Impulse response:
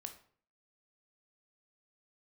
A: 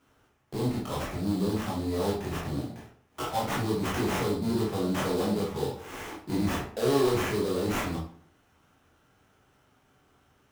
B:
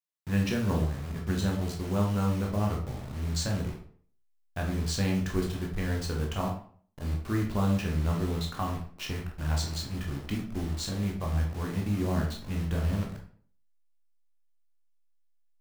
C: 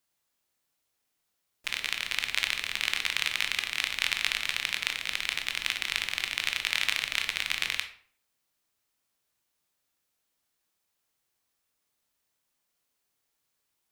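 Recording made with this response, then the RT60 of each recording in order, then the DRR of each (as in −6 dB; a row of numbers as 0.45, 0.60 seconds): C; 0.50, 0.50, 0.50 seconds; −5.0, −0.5, 6.0 decibels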